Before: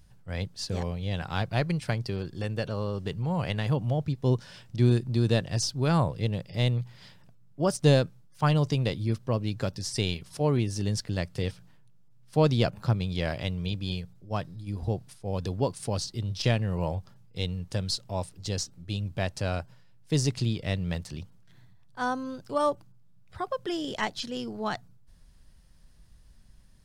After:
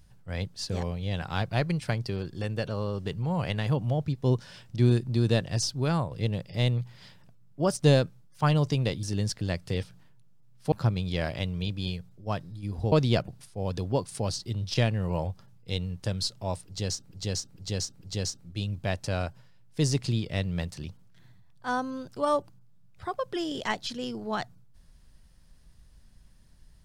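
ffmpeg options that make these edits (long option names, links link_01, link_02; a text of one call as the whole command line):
ffmpeg -i in.wav -filter_complex "[0:a]asplit=9[link_01][link_02][link_03][link_04][link_05][link_06][link_07][link_08][link_09];[link_01]atrim=end=6.11,asetpts=PTS-STARTPTS,afade=type=out:start_time=5.65:duration=0.46:curve=qsin:silence=0.375837[link_10];[link_02]atrim=start=6.11:end=9.032,asetpts=PTS-STARTPTS,afade=type=in:duration=0.004:curve=hsin:silence=0.375837[link_11];[link_03]atrim=start=10.708:end=12.402[link_12];[link_04]atrim=start=12.758:end=14.962[link_13];[link_05]atrim=start=12.398:end=12.762[link_14];[link_06]atrim=start=14.958:end=18.792[link_15];[link_07]atrim=start=18.338:end=18.792[link_16];[link_08]atrim=start=18.338:end=18.792[link_17];[link_09]atrim=start=18.338[link_18];[link_10][link_11]concat=n=2:v=0:a=1[link_19];[link_19][link_12]acrossfade=duration=0.004:curve1=hsin:curve2=hsin[link_20];[link_20][link_13]acrossfade=duration=0.004:curve1=hsin:curve2=hsin[link_21];[link_21][link_14]acrossfade=duration=0.004:curve1=hsin:curve2=hsin[link_22];[link_22][link_15]acrossfade=duration=0.004:curve1=hsin:curve2=hsin[link_23];[link_23][link_16]acrossfade=duration=0.004:curve1=hsin:curve2=hsin[link_24];[link_24][link_17]acrossfade=duration=0.004:curve1=hsin:curve2=hsin[link_25];[link_25][link_18]acrossfade=duration=0.004:curve1=hsin:curve2=hsin" out.wav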